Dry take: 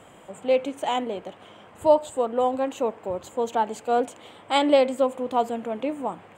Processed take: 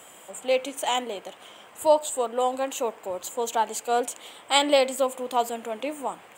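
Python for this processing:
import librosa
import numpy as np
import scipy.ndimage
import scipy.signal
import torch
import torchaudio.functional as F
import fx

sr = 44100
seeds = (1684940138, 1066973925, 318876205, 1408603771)

y = fx.riaa(x, sr, side='recording')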